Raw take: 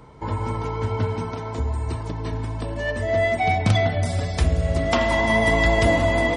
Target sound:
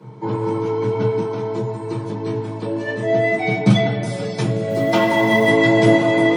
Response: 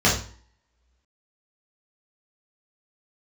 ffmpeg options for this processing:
-filter_complex "[1:a]atrim=start_sample=2205,asetrate=88200,aresample=44100[a];[0:a][a]afir=irnorm=-1:irlink=0,asettb=1/sr,asplit=3[b][c][d];[b]atrim=end=4.704[e];[c]atrim=start=4.7:end=5.49,asetpts=PTS-STARTPTS,afade=t=in:d=0.004:c=qsin,afade=t=out:st=0.786:d=0.004:c=qsin,acrusher=bits=8:mode=log:mix=0:aa=0.000001[f];[d]atrim=start=5.486[g];[e][f]acrossfade=d=0.004:c1=hsin:c2=qsin[h];[h][g]acrossfade=d=0.004:c1=qsin:c2=hsin,volume=-12dB"

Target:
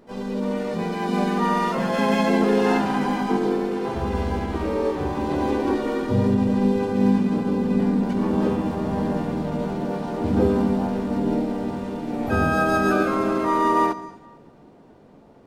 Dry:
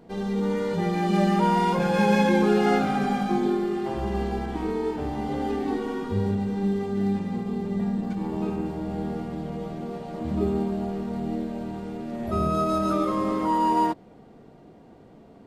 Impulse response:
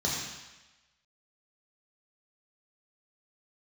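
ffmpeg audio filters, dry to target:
-filter_complex "[0:a]asplit=2[a][b];[1:a]atrim=start_sample=2205,adelay=109[c];[b][c]afir=irnorm=-1:irlink=0,volume=-24.5dB[d];[a][d]amix=inputs=2:normalize=0,asplit=3[e][f][g];[f]asetrate=55563,aresample=44100,atempo=0.793701,volume=-2dB[h];[g]asetrate=88200,aresample=44100,atempo=0.5,volume=-14dB[i];[e][h][i]amix=inputs=3:normalize=0,dynaudnorm=f=980:g=7:m=9dB,volume=-3dB"

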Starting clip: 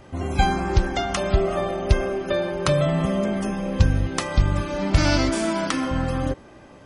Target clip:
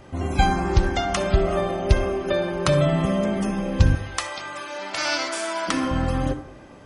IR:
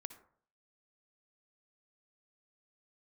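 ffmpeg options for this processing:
-filter_complex "[0:a]asettb=1/sr,asplit=3[a][b][c];[a]atrim=end=3.954[d];[b]atrim=start=3.95:end=5.68,asetpts=PTS-STARTPTS,afade=t=in:d=0.004:c=qsin,afade=t=out:st=1.726:d=0.004:c=qsin,highpass=750[e];[c]atrim=start=5.676[f];[d][e]acrossfade=d=0.004:c1=hsin:c2=qsin[g];[g][f]acrossfade=d=0.004:c1=qsin:c2=hsin[h];[1:a]atrim=start_sample=2205[i];[h][i]afir=irnorm=-1:irlink=0,volume=5dB"

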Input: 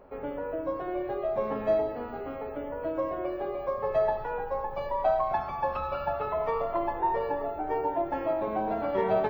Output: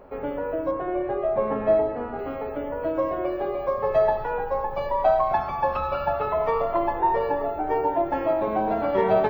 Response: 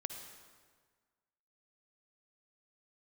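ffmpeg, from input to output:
-filter_complex "[0:a]asettb=1/sr,asplit=3[a][b][c];[a]atrim=end=0.714[d];[b]atrim=start=0.71:end=2.19,asetpts=PTS-STARTPTS,afade=t=in:d=0.004:c=qsin,afade=t=out:st=1.476:d=0.004:c=qsin,lowpass=2.4k[e];[c]atrim=start=2.186[f];[d][e]acrossfade=d=0.004:c1=hsin:c2=qsin[g];[g][f]acrossfade=d=0.004:c1=qsin:c2=hsin,volume=5.5dB"

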